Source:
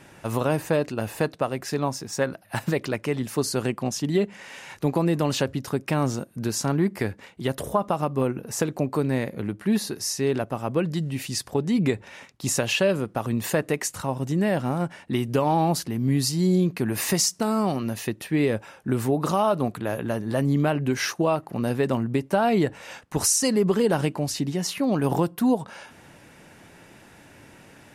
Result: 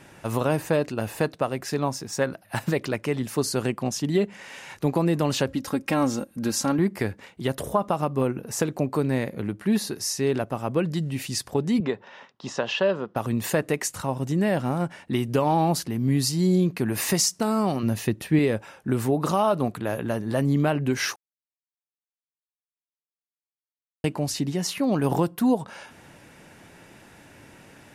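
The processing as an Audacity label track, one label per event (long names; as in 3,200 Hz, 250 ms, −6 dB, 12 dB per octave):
5.480000	6.790000	comb filter 3.7 ms, depth 60%
11.800000	13.160000	loudspeaker in its box 230–4,700 Hz, peaks and dips at 300 Hz −7 dB, 1,000 Hz +4 dB, 2,300 Hz −9 dB, 4,300 Hz −5 dB
17.830000	18.390000	low-shelf EQ 260 Hz +7.5 dB
21.160000	24.040000	silence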